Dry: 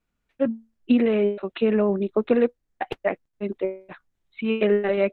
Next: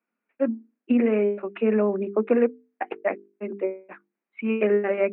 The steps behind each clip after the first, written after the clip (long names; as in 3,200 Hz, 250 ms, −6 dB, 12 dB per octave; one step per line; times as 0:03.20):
Chebyshev band-pass filter 210–2,500 Hz, order 4
mains-hum notches 50/100/150/200/250/300/350/400/450 Hz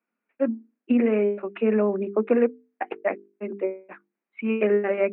no processing that can be heard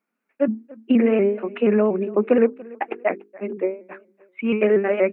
repeating echo 289 ms, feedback 35%, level −22 dB
pitch modulation by a square or saw wave saw up 4.2 Hz, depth 100 cents
level +3.5 dB